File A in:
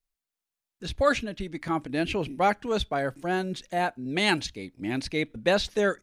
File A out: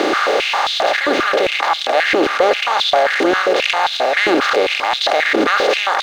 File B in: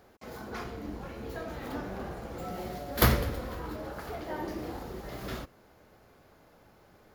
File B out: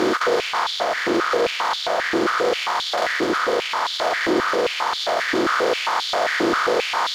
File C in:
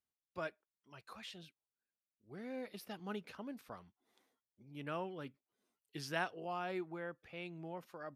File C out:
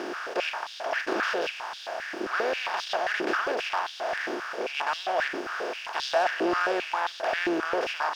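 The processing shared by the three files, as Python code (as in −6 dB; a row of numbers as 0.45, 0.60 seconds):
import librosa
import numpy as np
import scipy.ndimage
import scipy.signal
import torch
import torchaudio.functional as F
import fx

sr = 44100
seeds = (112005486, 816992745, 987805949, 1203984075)

p1 = fx.bin_compress(x, sr, power=0.2)
p2 = scipy.signal.sosfilt(scipy.signal.butter(4, 7200.0, 'lowpass', fs=sr, output='sos'), p1)
p3 = fx.over_compress(p2, sr, threshold_db=-25.0, ratio=-0.5)
p4 = p2 + (p3 * librosa.db_to_amplitude(2.0))
p5 = fx.leveller(p4, sr, passes=2)
p6 = fx.filter_held_highpass(p5, sr, hz=7.5, low_hz=330.0, high_hz=3600.0)
y = p6 * librosa.db_to_amplitude(-10.0)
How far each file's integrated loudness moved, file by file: +12.5, +14.0, +16.5 LU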